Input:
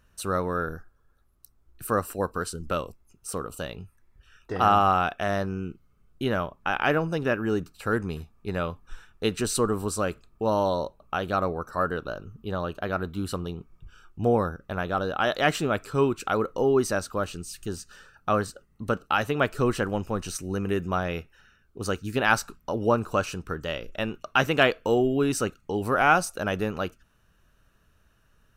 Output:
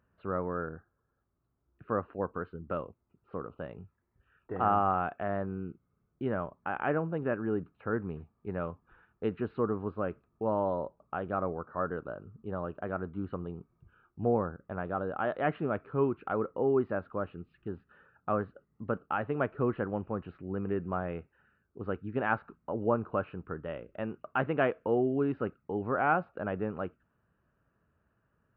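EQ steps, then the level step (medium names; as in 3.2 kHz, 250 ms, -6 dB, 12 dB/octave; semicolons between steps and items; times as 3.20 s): Gaussian low-pass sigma 4.6 samples; high-pass 92 Hz; -5.0 dB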